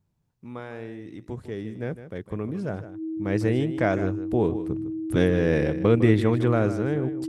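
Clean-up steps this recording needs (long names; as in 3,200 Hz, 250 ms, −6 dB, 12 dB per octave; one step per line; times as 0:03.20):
notch filter 320 Hz, Q 30
echo removal 155 ms −12.5 dB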